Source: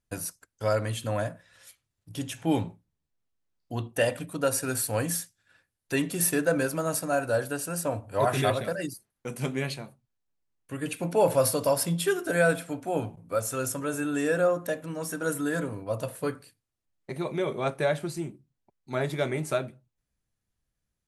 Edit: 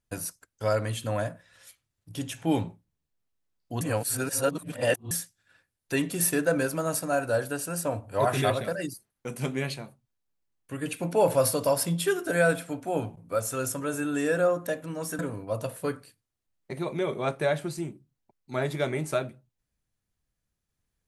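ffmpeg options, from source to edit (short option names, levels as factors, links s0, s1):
-filter_complex "[0:a]asplit=4[s0][s1][s2][s3];[s0]atrim=end=3.812[s4];[s1]atrim=start=3.808:end=5.112,asetpts=PTS-STARTPTS,areverse[s5];[s2]atrim=start=5.108:end=15.192[s6];[s3]atrim=start=15.578[s7];[s4][s5]acrossfade=d=0.004:c1=hsin:c2=hsin[s8];[s8][s6]acrossfade=d=0.004:c1=hsin:c2=hsin[s9];[s9][s7]acrossfade=d=0.004:c1=hsin:c2=hsin"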